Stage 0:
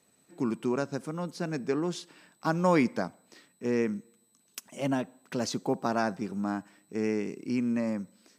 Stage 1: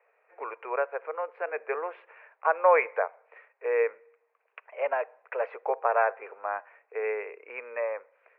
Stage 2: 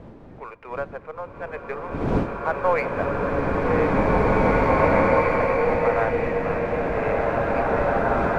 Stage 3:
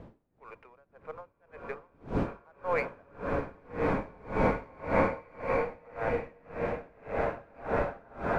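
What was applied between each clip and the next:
Chebyshev band-pass 450–2500 Hz, order 5; gain +6.5 dB
half-wave gain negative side -3 dB; wind noise 360 Hz -35 dBFS; bloom reverb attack 2.5 s, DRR -8 dB
dB-linear tremolo 1.8 Hz, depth 30 dB; gain -5 dB

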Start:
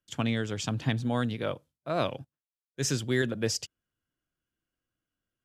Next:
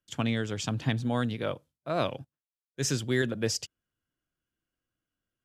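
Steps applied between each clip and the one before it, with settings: nothing audible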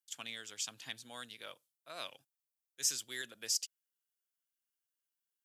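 differentiator; gain +1 dB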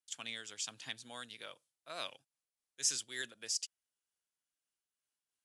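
steep low-pass 11000 Hz 72 dB/oct; noise-modulated level, depth 55%; gain +3 dB

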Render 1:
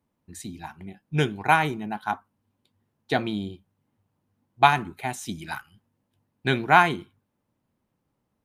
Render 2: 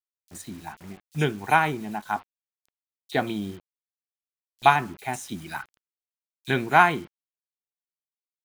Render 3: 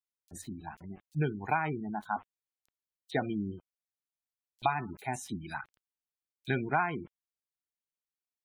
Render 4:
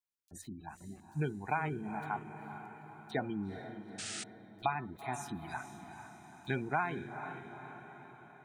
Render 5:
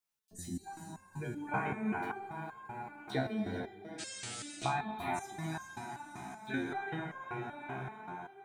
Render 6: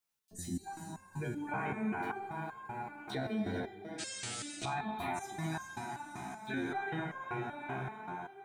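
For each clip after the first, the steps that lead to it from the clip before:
low shelf 130 Hz -4 dB; bit-crush 8-bit; bands offset in time highs, lows 30 ms, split 3700 Hz
spectral gate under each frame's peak -20 dB strong; low shelf 150 Hz +5.5 dB; compressor 5:1, threshold -20 dBFS, peak gain reduction 9 dB; gain -5 dB
on a send: diffused feedback echo 0.453 s, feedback 56%, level -9.5 dB; on the sum: painted sound noise, 3.98–4.24, 1200–9500 Hz -38 dBFS; gain -4 dB
compressor 2:1, threshold -39 dBFS, peak gain reduction 7 dB; non-linear reverb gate 0.49 s flat, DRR 1.5 dB; stepped resonator 5.2 Hz 66–530 Hz; gain +13 dB
limiter -29.5 dBFS, peak gain reduction 10 dB; gain +2 dB

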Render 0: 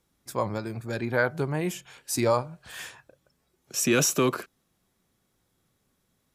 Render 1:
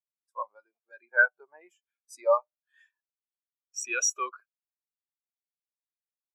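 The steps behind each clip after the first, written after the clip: HPF 820 Hz 12 dB/oct; spectral expander 2.5:1; gain +4 dB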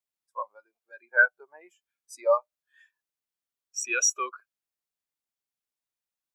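dynamic EQ 870 Hz, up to -5 dB, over -35 dBFS, Q 1.3; gain +3 dB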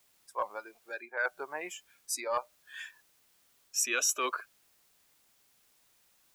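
reverse; compressor 5:1, threshold -32 dBFS, peak gain reduction 16 dB; reverse; spectral compressor 2:1; gain +5.5 dB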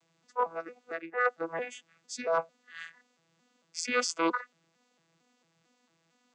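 arpeggiated vocoder bare fifth, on E3, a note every 0.226 s; gain +3.5 dB

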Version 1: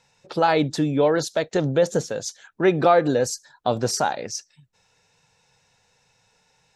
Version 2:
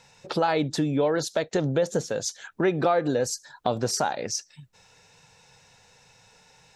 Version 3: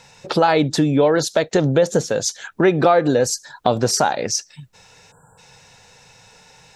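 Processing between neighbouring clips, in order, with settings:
compressor 2:1, threshold -37 dBFS, peak gain reduction 13.5 dB; gain +7 dB
spectral delete 5.12–5.38, 1700–7100 Hz; gain +8 dB

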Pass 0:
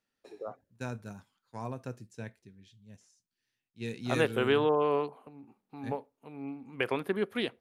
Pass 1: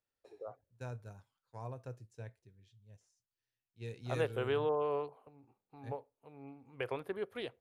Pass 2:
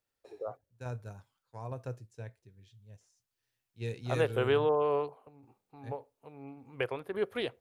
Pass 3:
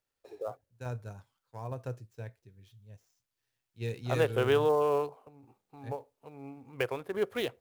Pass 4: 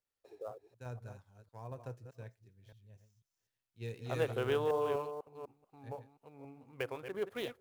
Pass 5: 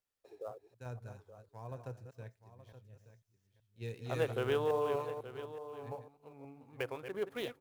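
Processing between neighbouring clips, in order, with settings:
EQ curve 120 Hz 0 dB, 210 Hz -14 dB, 500 Hz -2 dB, 1900 Hz -8 dB; gain -2.5 dB
random-step tremolo; gain +7.5 dB
switching dead time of 0.052 ms; gain +1.5 dB
reverse delay 0.248 s, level -9 dB; gain -7 dB
echo 0.874 s -13.5 dB

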